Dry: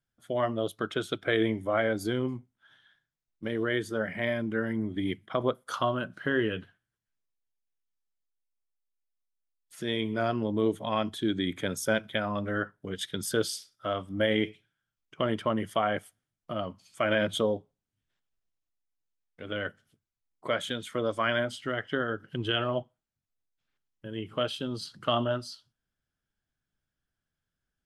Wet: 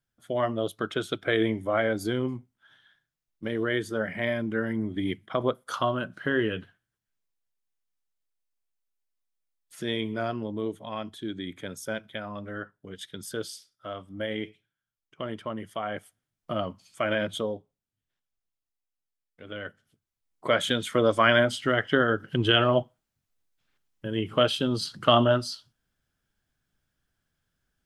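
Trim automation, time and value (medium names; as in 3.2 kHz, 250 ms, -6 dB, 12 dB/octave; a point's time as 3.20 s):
9.85 s +1.5 dB
10.78 s -6 dB
15.78 s -6 dB
16.52 s +4 dB
17.54 s -4 dB
19.62 s -4 dB
20.70 s +7.5 dB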